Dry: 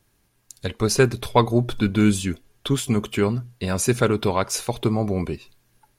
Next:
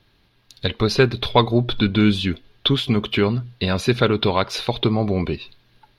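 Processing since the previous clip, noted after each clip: in parallel at +1 dB: compressor, threshold -26 dBFS, peak gain reduction 14.5 dB; on the sum: resonant high shelf 5500 Hz -13 dB, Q 3; gain -1 dB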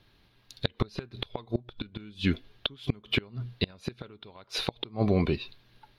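flipped gate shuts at -9 dBFS, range -28 dB; gain -3 dB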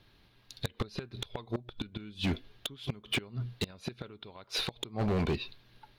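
hard clip -26 dBFS, distortion -7 dB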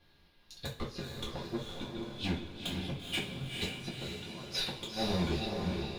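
diffused feedback echo 0.461 s, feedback 45%, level -3 dB; two-slope reverb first 0.28 s, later 1.5 s, DRR -5 dB; gain -8 dB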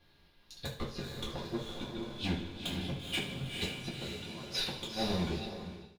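ending faded out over 0.97 s; feedback echo 77 ms, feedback 59%, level -14 dB

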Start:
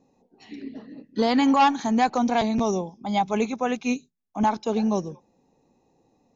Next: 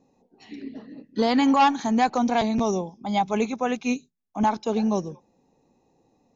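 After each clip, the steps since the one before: nothing audible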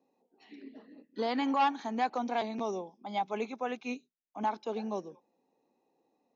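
three-band isolator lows -24 dB, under 230 Hz, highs -18 dB, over 5200 Hz; gain -8.5 dB

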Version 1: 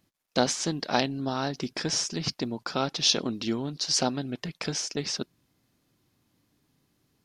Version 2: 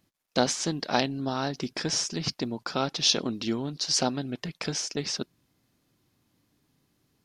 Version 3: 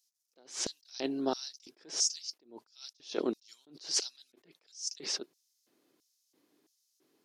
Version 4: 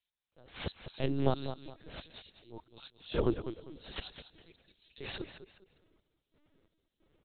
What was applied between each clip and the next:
nothing audible
LFO high-pass square 1.5 Hz 360–5700 Hz; attack slew limiter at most 170 dB/s; gain -2 dB
feedback echo 0.205 s, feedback 30%, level -10.5 dB; LPC vocoder at 8 kHz pitch kept; gain +3 dB

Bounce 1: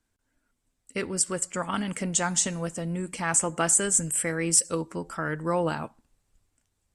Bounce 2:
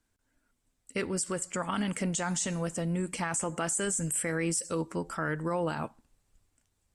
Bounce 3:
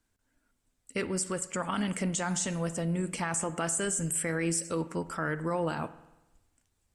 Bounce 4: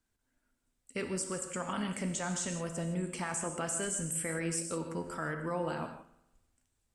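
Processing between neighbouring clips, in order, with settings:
limiter -21.5 dBFS, peak gain reduction 12 dB
spring tank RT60 1 s, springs 48 ms, chirp 80 ms, DRR 14.5 dB
non-linear reverb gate 0.19 s flat, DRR 6 dB; gain -5 dB

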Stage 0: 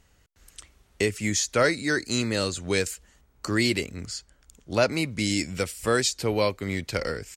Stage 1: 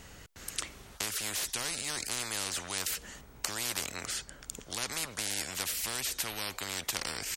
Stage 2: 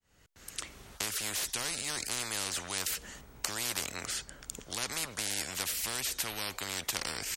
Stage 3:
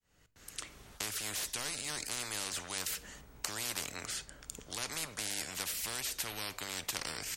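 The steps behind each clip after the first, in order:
spectral compressor 10:1
opening faded in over 0.89 s
reverb RT60 0.50 s, pre-delay 7 ms, DRR 14 dB; gain -3.5 dB

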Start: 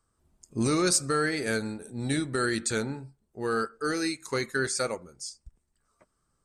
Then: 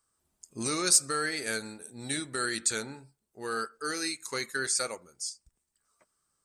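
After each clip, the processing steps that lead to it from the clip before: tilt +2.5 dB/oct; gain -4 dB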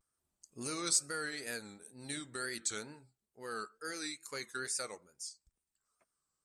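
wow and flutter 110 cents; gain -8.5 dB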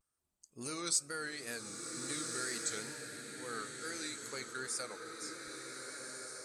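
bloom reverb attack 1.57 s, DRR 2.5 dB; gain -2 dB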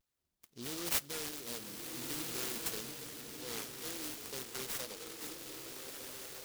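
noise-modulated delay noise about 4200 Hz, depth 0.22 ms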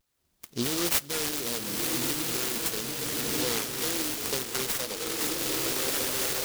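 recorder AGC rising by 20 dB/s; gain +7 dB

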